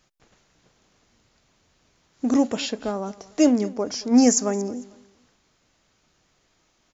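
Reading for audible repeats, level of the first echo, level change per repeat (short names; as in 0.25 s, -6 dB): 2, -21.0 dB, -10.0 dB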